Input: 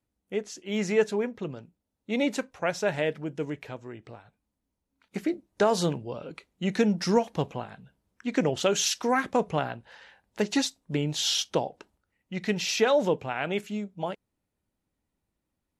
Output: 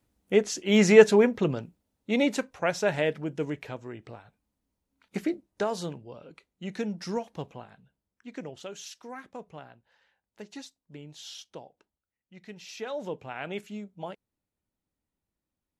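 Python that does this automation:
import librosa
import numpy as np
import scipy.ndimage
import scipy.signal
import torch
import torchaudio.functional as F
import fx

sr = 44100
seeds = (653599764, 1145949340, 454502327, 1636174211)

y = fx.gain(x, sr, db=fx.line((1.57, 8.5), (2.3, 1.0), (5.17, 1.0), (5.82, -8.5), (7.74, -8.5), (8.78, -17.0), (12.61, -17.0), (13.36, -6.0)))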